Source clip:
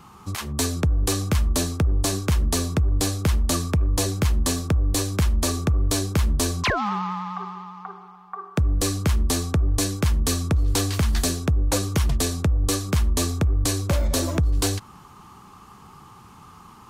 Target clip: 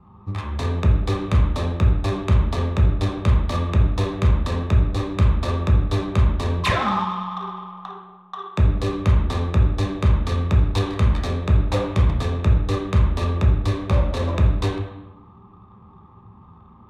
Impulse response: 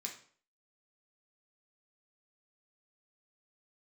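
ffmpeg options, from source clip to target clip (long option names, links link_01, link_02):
-filter_complex "[0:a]asettb=1/sr,asplit=3[link_01][link_02][link_03];[link_01]atrim=end=7.034[link_04];[link_02]atrim=start=7.03:end=7.44,asetpts=PTS-STARTPTS,afade=type=in:duration=0.004:curve=qsin,afade=type=out:start_time=0.406:duration=0.004:curve=qsin,lowpass=frequency=2200:poles=1[link_05];[link_03]atrim=start=7.436[link_06];[link_04][link_05]acrossfade=duration=0.004:curve1=hsin:curve2=qsin[link_07];[link_07][link_06]acrossfade=duration=0.004:curve1=qsin:curve2=hsin,adynamicsmooth=sensitivity=2:basefreq=560[link_08];[1:a]atrim=start_sample=2205,asetrate=22491,aresample=44100[link_09];[link_08][link_09]afir=irnorm=-1:irlink=0"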